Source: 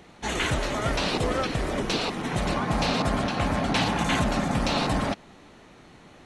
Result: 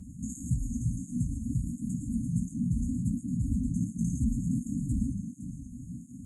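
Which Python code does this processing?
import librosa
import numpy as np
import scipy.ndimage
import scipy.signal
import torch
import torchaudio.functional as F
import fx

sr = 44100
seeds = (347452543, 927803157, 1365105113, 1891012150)

p1 = fx.high_shelf(x, sr, hz=8400.0, db=-10.5)
p2 = fx.hum_notches(p1, sr, base_hz=50, count=4)
p3 = fx.over_compress(p2, sr, threshold_db=-38.0, ratio=-1.0)
p4 = p2 + F.gain(torch.from_numpy(p3), 3.0).numpy()
p5 = fx.brickwall_bandstop(p4, sr, low_hz=280.0, high_hz=6400.0)
p6 = fx.doubler(p5, sr, ms=17.0, db=-13.5)
p7 = p6 + 10.0 ** (-11.5 / 20.0) * np.pad(p6, (int(511 * sr / 1000.0), 0))[:len(p6)]
y = fx.flanger_cancel(p7, sr, hz=1.4, depth_ms=7.1)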